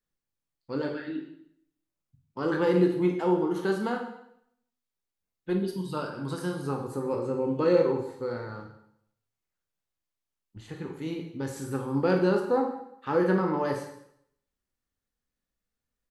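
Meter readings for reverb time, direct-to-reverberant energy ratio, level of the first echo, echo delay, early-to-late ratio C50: 0.70 s, 1.5 dB, -19.5 dB, 0.192 s, 5.5 dB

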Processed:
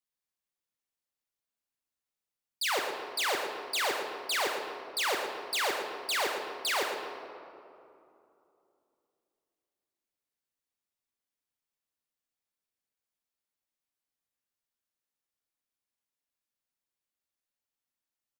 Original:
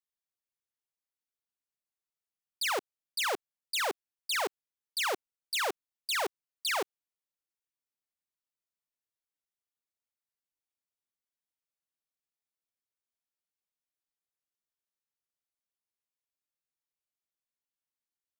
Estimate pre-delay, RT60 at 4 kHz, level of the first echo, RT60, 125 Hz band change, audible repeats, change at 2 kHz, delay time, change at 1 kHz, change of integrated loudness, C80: 4 ms, 1.3 s, -7.5 dB, 2.8 s, n/a, 1, +2.5 dB, 0.115 s, +2.5 dB, +1.5 dB, 3.5 dB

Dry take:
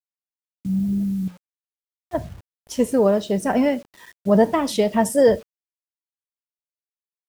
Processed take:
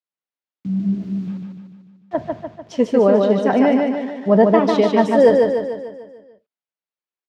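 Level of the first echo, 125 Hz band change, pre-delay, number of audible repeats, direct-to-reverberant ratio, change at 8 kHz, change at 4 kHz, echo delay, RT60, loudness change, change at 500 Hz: -3.5 dB, +2.0 dB, none, 6, none, under -10 dB, +0.5 dB, 0.148 s, none, +4.0 dB, +5.0 dB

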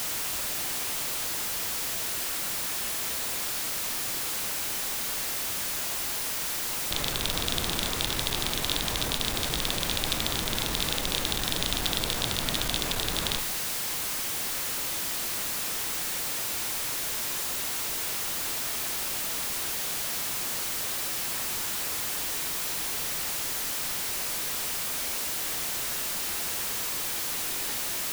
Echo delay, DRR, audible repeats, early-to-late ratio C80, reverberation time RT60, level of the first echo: none, 9.0 dB, none, 14.0 dB, 0.95 s, none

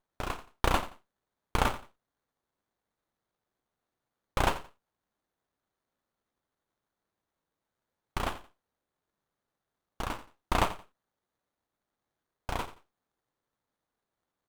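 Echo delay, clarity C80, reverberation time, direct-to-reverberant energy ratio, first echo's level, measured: 87 ms, none, none, none, -15.0 dB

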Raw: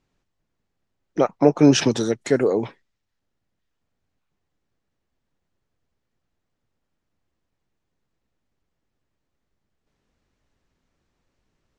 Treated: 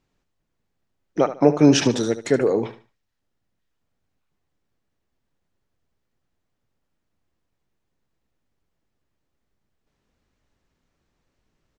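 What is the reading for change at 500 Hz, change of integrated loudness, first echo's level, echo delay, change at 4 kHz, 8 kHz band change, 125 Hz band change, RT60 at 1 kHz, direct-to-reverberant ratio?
0.0 dB, 0.0 dB, -13.0 dB, 74 ms, 0.0 dB, 0.0 dB, 0.0 dB, none, none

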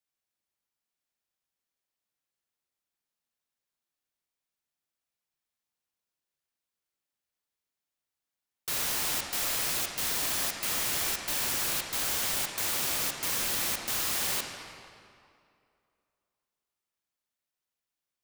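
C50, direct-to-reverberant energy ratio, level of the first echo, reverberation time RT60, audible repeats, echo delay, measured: 3.0 dB, 2.5 dB, none, 2.4 s, none, none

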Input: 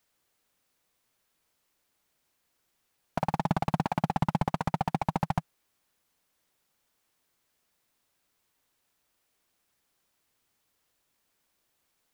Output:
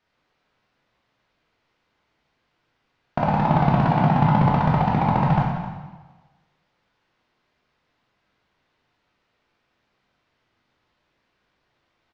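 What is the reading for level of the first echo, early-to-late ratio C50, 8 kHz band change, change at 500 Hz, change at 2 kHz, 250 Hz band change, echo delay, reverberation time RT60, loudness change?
-13.5 dB, 1.0 dB, n/a, +10.5 dB, +9.5 dB, +11.0 dB, 0.261 s, 1.3 s, +11.0 dB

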